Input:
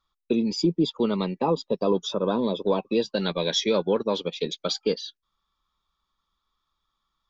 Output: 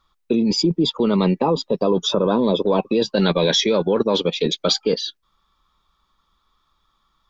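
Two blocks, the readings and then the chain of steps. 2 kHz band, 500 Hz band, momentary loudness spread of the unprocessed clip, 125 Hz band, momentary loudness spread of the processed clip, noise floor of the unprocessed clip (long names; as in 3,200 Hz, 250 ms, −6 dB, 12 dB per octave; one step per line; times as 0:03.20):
+6.5 dB, +5.5 dB, 5 LU, +8.0 dB, 4 LU, −81 dBFS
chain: high-shelf EQ 3,000 Hz −5 dB
in parallel at +2 dB: compressor whose output falls as the input rises −28 dBFS, ratio −0.5
on the sum: level +2.5 dB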